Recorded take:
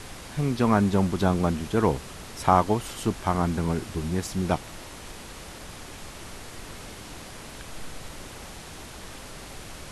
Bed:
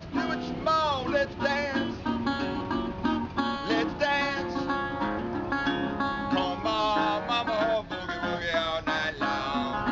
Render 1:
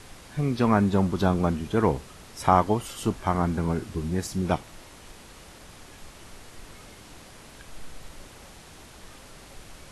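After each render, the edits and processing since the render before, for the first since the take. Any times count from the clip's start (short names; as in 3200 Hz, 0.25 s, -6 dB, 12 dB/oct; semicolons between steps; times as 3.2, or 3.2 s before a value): noise print and reduce 6 dB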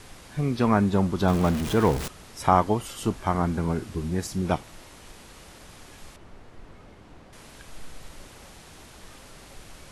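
1.28–2.08 zero-crossing step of -27.5 dBFS; 6.16–7.33 LPF 1100 Hz 6 dB/oct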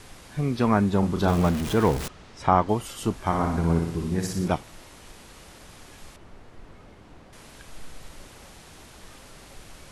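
0.99–1.48 doubler 35 ms -7 dB; 2.08–2.69 air absorption 100 m; 3.2–4.48 flutter echo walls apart 10.3 m, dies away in 0.72 s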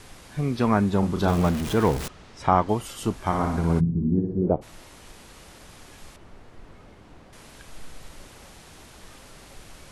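3.79–4.61 synth low-pass 160 Hz -> 580 Hz, resonance Q 2.8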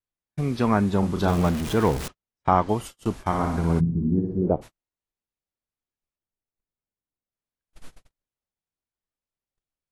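gate -34 dBFS, range -50 dB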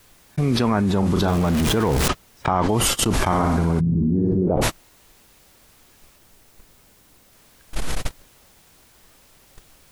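limiter -14.5 dBFS, peak gain reduction 8.5 dB; fast leveller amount 100%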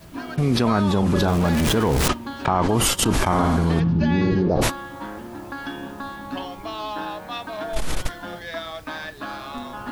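add bed -4.5 dB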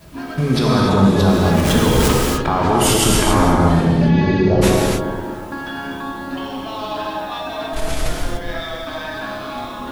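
analogue delay 0.241 s, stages 1024, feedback 35%, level -5.5 dB; non-linear reverb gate 0.32 s flat, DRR -3 dB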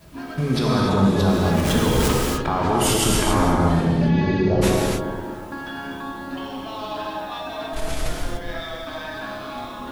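gain -4.5 dB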